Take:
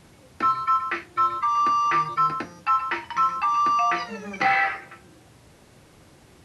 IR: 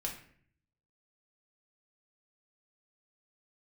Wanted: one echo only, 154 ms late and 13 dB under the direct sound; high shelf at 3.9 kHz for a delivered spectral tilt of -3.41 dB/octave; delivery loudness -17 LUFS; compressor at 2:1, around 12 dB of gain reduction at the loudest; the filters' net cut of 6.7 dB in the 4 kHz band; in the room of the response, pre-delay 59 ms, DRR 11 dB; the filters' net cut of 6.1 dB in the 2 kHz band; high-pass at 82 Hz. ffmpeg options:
-filter_complex "[0:a]highpass=82,equalizer=f=2000:t=o:g=-5,highshelf=f=3900:g=-4.5,equalizer=f=4000:t=o:g=-4.5,acompressor=threshold=0.00794:ratio=2,aecho=1:1:154:0.224,asplit=2[s0][s1];[1:a]atrim=start_sample=2205,adelay=59[s2];[s1][s2]afir=irnorm=-1:irlink=0,volume=0.251[s3];[s0][s3]amix=inputs=2:normalize=0,volume=8.41"

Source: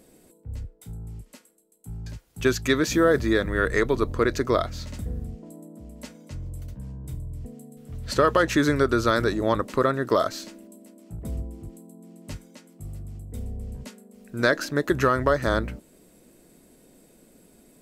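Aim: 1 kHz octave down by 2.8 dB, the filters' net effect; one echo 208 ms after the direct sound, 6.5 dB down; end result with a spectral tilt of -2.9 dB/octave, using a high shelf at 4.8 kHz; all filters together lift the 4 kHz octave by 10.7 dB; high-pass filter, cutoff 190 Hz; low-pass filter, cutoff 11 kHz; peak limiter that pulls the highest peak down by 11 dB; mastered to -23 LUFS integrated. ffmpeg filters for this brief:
-af "highpass=190,lowpass=11000,equalizer=f=1000:t=o:g=-5.5,equalizer=f=4000:t=o:g=9,highshelf=f=4800:g=8,alimiter=limit=0.211:level=0:latency=1,aecho=1:1:208:0.473,volume=1.33"

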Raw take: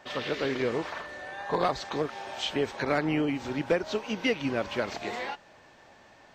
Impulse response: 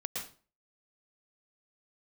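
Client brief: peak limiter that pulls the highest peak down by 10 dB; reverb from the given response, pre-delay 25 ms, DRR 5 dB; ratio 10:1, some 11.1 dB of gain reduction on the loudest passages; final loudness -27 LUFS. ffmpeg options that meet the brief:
-filter_complex "[0:a]acompressor=threshold=0.0251:ratio=10,alimiter=level_in=2.37:limit=0.0631:level=0:latency=1,volume=0.422,asplit=2[s0][s1];[1:a]atrim=start_sample=2205,adelay=25[s2];[s1][s2]afir=irnorm=-1:irlink=0,volume=0.447[s3];[s0][s3]amix=inputs=2:normalize=0,volume=4.22"

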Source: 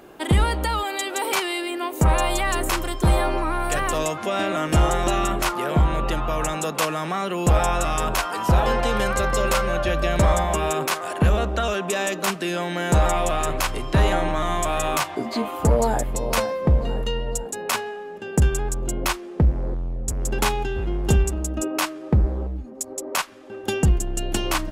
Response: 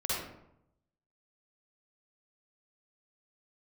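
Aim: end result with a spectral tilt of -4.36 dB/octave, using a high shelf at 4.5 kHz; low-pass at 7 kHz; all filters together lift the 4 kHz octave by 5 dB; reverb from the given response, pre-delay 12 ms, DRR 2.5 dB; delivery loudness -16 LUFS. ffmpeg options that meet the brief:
-filter_complex "[0:a]lowpass=7000,equalizer=f=4000:t=o:g=4,highshelf=f=4500:g=6,asplit=2[s0][s1];[1:a]atrim=start_sample=2205,adelay=12[s2];[s1][s2]afir=irnorm=-1:irlink=0,volume=0.355[s3];[s0][s3]amix=inputs=2:normalize=0,volume=1.58"

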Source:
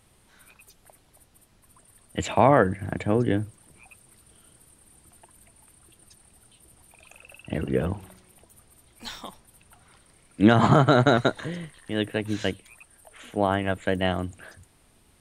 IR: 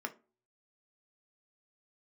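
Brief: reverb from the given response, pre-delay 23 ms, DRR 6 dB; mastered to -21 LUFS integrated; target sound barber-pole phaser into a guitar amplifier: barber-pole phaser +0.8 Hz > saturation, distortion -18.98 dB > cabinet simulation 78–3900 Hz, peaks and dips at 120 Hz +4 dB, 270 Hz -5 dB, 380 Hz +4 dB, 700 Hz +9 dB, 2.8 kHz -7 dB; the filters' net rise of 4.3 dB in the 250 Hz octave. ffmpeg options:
-filter_complex "[0:a]equalizer=f=250:t=o:g=7,asplit=2[s0][s1];[1:a]atrim=start_sample=2205,adelay=23[s2];[s1][s2]afir=irnorm=-1:irlink=0,volume=0.422[s3];[s0][s3]amix=inputs=2:normalize=0,asplit=2[s4][s5];[s5]afreqshift=0.8[s6];[s4][s6]amix=inputs=2:normalize=1,asoftclip=threshold=0.355,highpass=78,equalizer=f=120:t=q:w=4:g=4,equalizer=f=270:t=q:w=4:g=-5,equalizer=f=380:t=q:w=4:g=4,equalizer=f=700:t=q:w=4:g=9,equalizer=f=2800:t=q:w=4:g=-7,lowpass=f=3900:w=0.5412,lowpass=f=3900:w=1.3066,volume=1.26"

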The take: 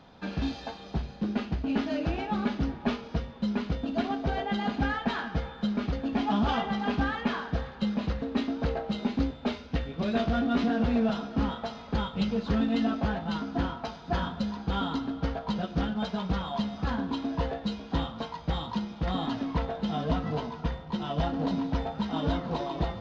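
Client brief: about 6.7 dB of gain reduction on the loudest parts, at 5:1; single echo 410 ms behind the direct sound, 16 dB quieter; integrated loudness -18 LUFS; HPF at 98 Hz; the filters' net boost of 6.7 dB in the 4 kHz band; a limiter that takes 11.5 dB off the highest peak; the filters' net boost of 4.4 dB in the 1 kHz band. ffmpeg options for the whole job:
-af "highpass=98,equalizer=f=1000:t=o:g=5.5,equalizer=f=4000:t=o:g=8,acompressor=threshold=0.0355:ratio=5,alimiter=level_in=2:limit=0.0631:level=0:latency=1,volume=0.501,aecho=1:1:410:0.158,volume=10.6"

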